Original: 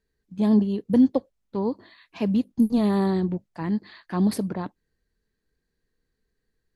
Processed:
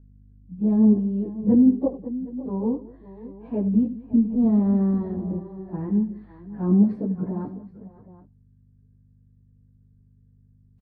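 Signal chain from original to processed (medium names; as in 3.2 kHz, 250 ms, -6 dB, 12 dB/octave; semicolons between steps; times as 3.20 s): low-pass 1.5 kHz 12 dB/octave; hum 50 Hz, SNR 29 dB; tilt shelf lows +9 dB; multi-tap echo 51/123/346/482 ms -13.5/-19.5/-15.5/-18.5 dB; plain phase-vocoder stretch 1.6×; trim -4.5 dB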